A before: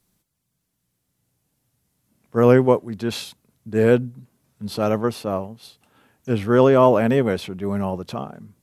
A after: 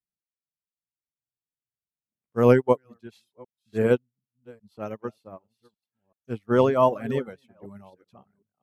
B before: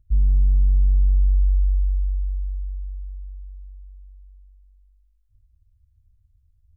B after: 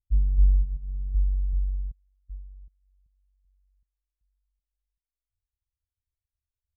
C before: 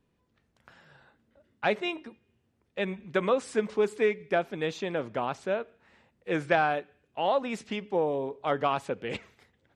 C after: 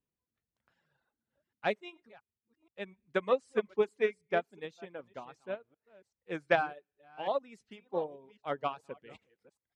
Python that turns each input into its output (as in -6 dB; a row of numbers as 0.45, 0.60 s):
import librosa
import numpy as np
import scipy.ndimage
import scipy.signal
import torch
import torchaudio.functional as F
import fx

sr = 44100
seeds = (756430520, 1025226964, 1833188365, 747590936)

y = fx.reverse_delay(x, sr, ms=383, wet_db=-11)
y = fx.dereverb_blind(y, sr, rt60_s=0.79)
y = fx.upward_expand(y, sr, threshold_db=-33.0, expansion=2.5)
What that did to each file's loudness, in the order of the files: -3.5, -5.0, -5.0 LU